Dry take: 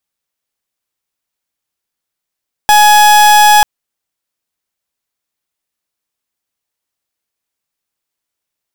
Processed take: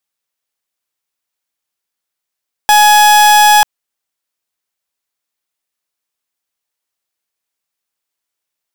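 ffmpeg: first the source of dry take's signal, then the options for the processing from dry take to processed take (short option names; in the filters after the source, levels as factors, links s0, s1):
-f lavfi -i "aevalsrc='0.531*(2*lt(mod(840*t,1),0.38)-1)':d=0.94:s=44100"
-af "lowshelf=f=320:g=-7.5"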